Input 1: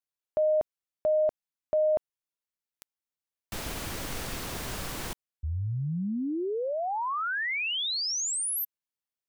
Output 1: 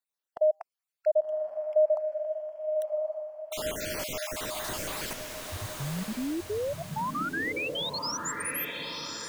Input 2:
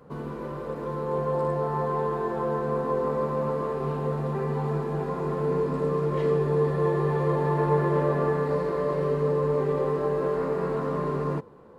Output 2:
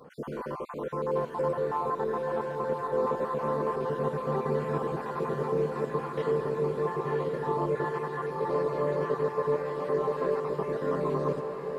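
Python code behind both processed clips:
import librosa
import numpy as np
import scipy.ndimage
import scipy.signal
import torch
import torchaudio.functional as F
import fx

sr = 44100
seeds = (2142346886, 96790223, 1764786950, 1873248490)

p1 = fx.spec_dropout(x, sr, seeds[0], share_pct=47)
p2 = fx.low_shelf(p1, sr, hz=190.0, db=-11.0)
p3 = fx.rider(p2, sr, range_db=4, speed_s=2.0)
y = p3 + fx.echo_diffused(p3, sr, ms=1081, feedback_pct=49, wet_db=-4.0, dry=0)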